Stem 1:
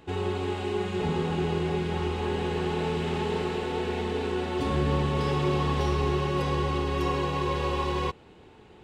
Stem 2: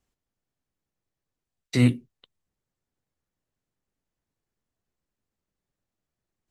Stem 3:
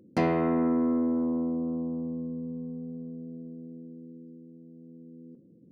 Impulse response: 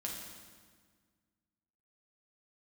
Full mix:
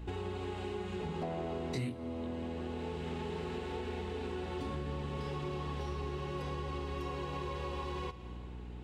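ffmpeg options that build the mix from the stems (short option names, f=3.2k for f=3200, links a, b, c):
-filter_complex "[0:a]aeval=exprs='val(0)+0.00794*(sin(2*PI*60*n/s)+sin(2*PI*2*60*n/s)/2+sin(2*PI*3*60*n/s)/3+sin(2*PI*4*60*n/s)/4+sin(2*PI*5*60*n/s)/5)':c=same,volume=-4.5dB,asplit=2[a][b];[b]volume=-10.5dB[c];[1:a]flanger=delay=18.5:depth=7.9:speed=0.96,volume=2.5dB,asplit=3[d][e][f];[e]volume=-16.5dB[g];[2:a]equalizer=f=650:w=1.5:g=13.5,adelay=1050,volume=-10dB[h];[f]apad=whole_len=389599[i];[a][i]sidechaincompress=threshold=-36dB:ratio=8:attack=16:release=1070[j];[3:a]atrim=start_sample=2205[k];[c][g]amix=inputs=2:normalize=0[l];[l][k]afir=irnorm=-1:irlink=0[m];[j][d][h][m]amix=inputs=4:normalize=0,lowshelf=f=140:g=3,acompressor=threshold=-37dB:ratio=4"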